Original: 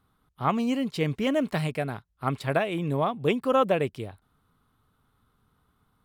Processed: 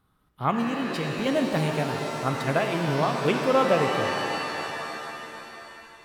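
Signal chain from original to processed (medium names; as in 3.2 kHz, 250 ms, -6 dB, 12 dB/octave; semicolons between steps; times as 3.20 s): 0.61–1.26 s: compression, threshold -27 dBFS, peak gain reduction 6.5 dB; pitch-shifted reverb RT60 3.2 s, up +7 st, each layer -2 dB, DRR 4.5 dB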